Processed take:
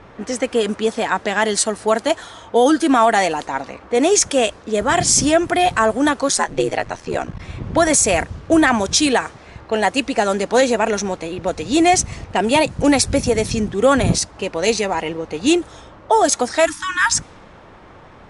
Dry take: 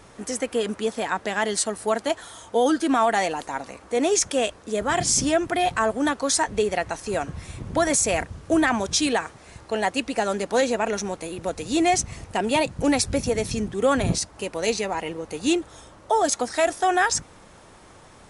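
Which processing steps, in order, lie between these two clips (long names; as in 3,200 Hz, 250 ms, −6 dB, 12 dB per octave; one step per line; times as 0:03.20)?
0:06.28–0:07.38: ring modulation 100 Hz → 26 Hz
0:16.65–0:17.18: time-frequency box erased 340–870 Hz
low-pass that shuts in the quiet parts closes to 2,500 Hz, open at −19 dBFS
level +6.5 dB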